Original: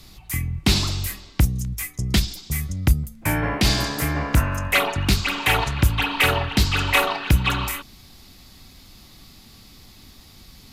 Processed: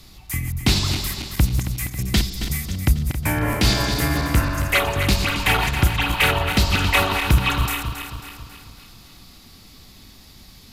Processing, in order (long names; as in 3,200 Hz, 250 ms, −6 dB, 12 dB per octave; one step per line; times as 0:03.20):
feedback delay that plays each chunk backwards 136 ms, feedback 71%, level −7.5 dB